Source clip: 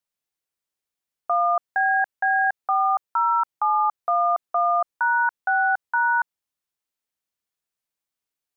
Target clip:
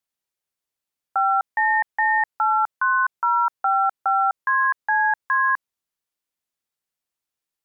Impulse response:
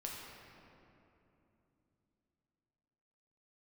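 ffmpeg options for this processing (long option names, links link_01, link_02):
-af "asetrate=49392,aresample=44100,volume=1dB"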